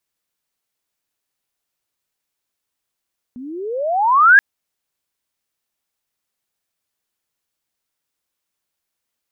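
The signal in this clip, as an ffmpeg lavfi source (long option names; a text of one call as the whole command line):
ffmpeg -f lavfi -i "aevalsrc='pow(10,(-4+26*(t/1.03-1))/20)*sin(2*PI*238*1.03/(34*log(2)/12)*(exp(34*log(2)/12*t/1.03)-1))':duration=1.03:sample_rate=44100" out.wav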